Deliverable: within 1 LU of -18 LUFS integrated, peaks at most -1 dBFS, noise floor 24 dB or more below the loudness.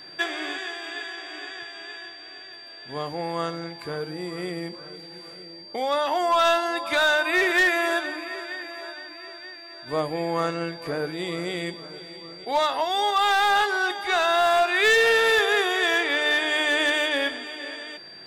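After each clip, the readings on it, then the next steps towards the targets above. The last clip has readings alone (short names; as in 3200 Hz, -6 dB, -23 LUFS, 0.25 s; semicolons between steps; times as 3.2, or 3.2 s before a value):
clipped 1.1%; flat tops at -15.0 dBFS; steady tone 4700 Hz; tone level -42 dBFS; loudness -23.0 LUFS; peak -15.0 dBFS; loudness target -18.0 LUFS
-> clip repair -15 dBFS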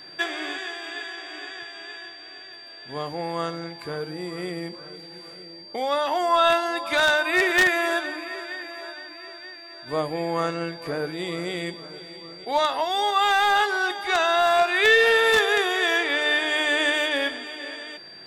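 clipped 0.0%; steady tone 4700 Hz; tone level -42 dBFS
-> notch 4700 Hz, Q 30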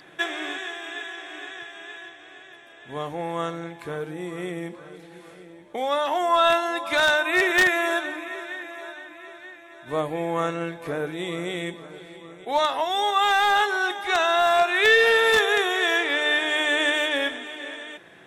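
steady tone none; loudness -22.5 LUFS; peak -6.0 dBFS; loudness target -18.0 LUFS
-> gain +4.5 dB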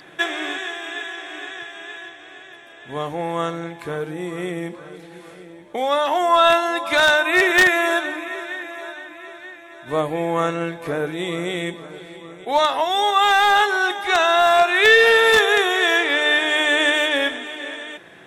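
loudness -18.0 LUFS; peak -1.5 dBFS; noise floor -43 dBFS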